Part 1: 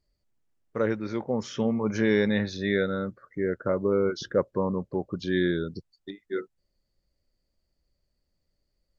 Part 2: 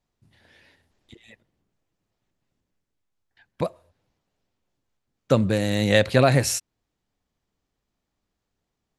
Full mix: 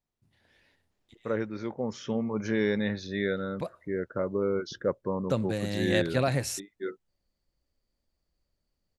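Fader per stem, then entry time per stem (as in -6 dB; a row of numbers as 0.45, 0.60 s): -4.0, -9.0 dB; 0.50, 0.00 s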